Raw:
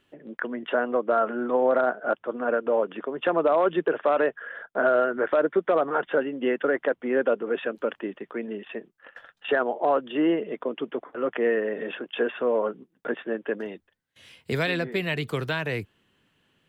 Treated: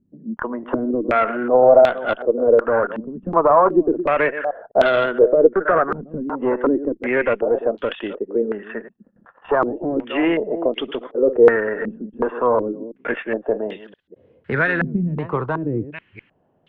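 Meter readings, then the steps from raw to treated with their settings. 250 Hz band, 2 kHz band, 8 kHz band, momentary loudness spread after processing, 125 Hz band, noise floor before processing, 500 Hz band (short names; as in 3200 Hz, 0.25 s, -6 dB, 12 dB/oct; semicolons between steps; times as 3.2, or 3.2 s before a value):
+7.0 dB, +5.5 dB, n/a, 14 LU, +7.5 dB, -72 dBFS, +7.0 dB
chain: reverse delay 0.205 s, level -12 dB; tube stage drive 15 dB, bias 0.35; stepped low-pass 2.7 Hz 210–3400 Hz; gain +5 dB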